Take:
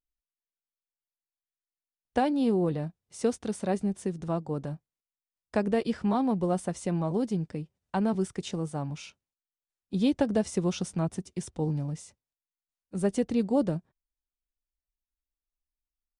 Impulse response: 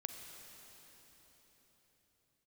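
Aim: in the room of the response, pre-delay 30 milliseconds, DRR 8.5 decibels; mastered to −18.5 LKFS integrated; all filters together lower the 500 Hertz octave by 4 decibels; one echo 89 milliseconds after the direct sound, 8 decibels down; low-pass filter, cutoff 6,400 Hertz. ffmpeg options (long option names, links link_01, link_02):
-filter_complex "[0:a]lowpass=6400,equalizer=frequency=500:width_type=o:gain=-5,aecho=1:1:89:0.398,asplit=2[link_01][link_02];[1:a]atrim=start_sample=2205,adelay=30[link_03];[link_02][link_03]afir=irnorm=-1:irlink=0,volume=-6.5dB[link_04];[link_01][link_04]amix=inputs=2:normalize=0,volume=12dB"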